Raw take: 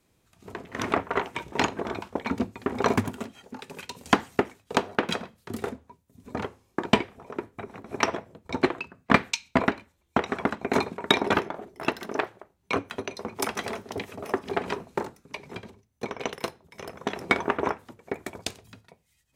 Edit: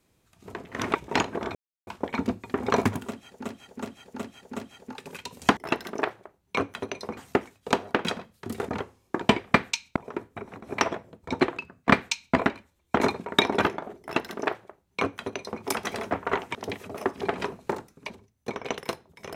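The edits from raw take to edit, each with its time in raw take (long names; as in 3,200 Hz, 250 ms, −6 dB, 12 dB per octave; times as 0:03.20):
0:00.95–0:01.39: move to 0:13.83
0:01.99: splice in silence 0.32 s
0:03.20–0:03.57: repeat, 5 plays
0:05.73–0:06.33: remove
0:09.14–0:09.56: duplicate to 0:07.18
0:10.22–0:10.72: remove
0:11.73–0:13.33: duplicate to 0:04.21
0:15.38–0:15.65: remove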